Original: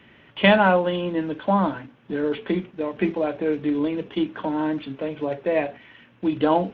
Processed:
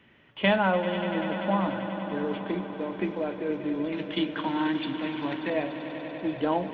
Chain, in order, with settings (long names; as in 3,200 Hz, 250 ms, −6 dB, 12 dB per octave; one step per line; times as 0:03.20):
0:03.92–0:05.50: octave-band graphic EQ 250/500/1,000/2,000/4,000 Hz +8/−10/+7/+8/+11 dB
echo that builds up and dies away 97 ms, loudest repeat 5, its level −14.5 dB
level −7 dB